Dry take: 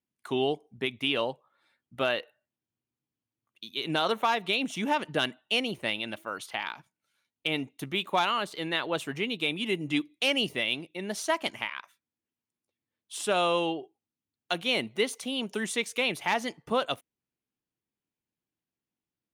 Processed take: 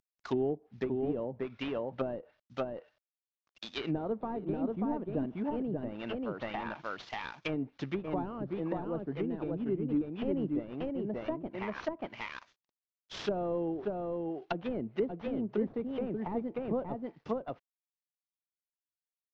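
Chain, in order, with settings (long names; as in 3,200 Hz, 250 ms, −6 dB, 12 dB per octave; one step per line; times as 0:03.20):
variable-slope delta modulation 32 kbit/s
single-tap delay 585 ms −3 dB
treble cut that deepens with the level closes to 410 Hz, closed at −27 dBFS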